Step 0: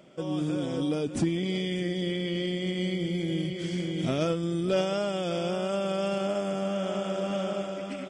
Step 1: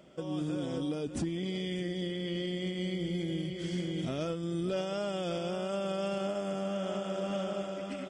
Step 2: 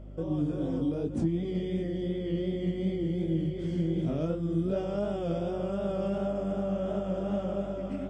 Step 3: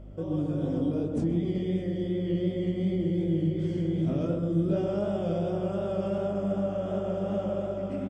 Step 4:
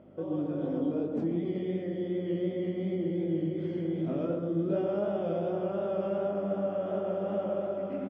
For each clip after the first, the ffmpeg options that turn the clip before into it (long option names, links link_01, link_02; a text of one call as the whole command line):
ffmpeg -i in.wav -af "equalizer=frequency=64:width=5.1:gain=11,bandreject=frequency=2300:width=18,alimiter=limit=-22.5dB:level=0:latency=1:release=448,volume=-2.5dB" out.wav
ffmpeg -i in.wav -af "tiltshelf=frequency=1200:gain=8.5,flanger=delay=18.5:depth=6.4:speed=2.7,aeval=exprs='val(0)+0.00708*(sin(2*PI*50*n/s)+sin(2*PI*2*50*n/s)/2+sin(2*PI*3*50*n/s)/3+sin(2*PI*4*50*n/s)/4+sin(2*PI*5*50*n/s)/5)':channel_layout=same" out.wav
ffmpeg -i in.wav -filter_complex "[0:a]asplit=2[link_01][link_02];[link_02]adelay=130,lowpass=frequency=1100:poles=1,volume=-3dB,asplit=2[link_03][link_04];[link_04]adelay=130,lowpass=frequency=1100:poles=1,volume=0.53,asplit=2[link_05][link_06];[link_06]adelay=130,lowpass=frequency=1100:poles=1,volume=0.53,asplit=2[link_07][link_08];[link_08]adelay=130,lowpass=frequency=1100:poles=1,volume=0.53,asplit=2[link_09][link_10];[link_10]adelay=130,lowpass=frequency=1100:poles=1,volume=0.53,asplit=2[link_11][link_12];[link_12]adelay=130,lowpass=frequency=1100:poles=1,volume=0.53,asplit=2[link_13][link_14];[link_14]adelay=130,lowpass=frequency=1100:poles=1,volume=0.53[link_15];[link_01][link_03][link_05][link_07][link_09][link_11][link_13][link_15]amix=inputs=8:normalize=0" out.wav
ffmpeg -i in.wav -af "highpass=240,lowpass=2500" out.wav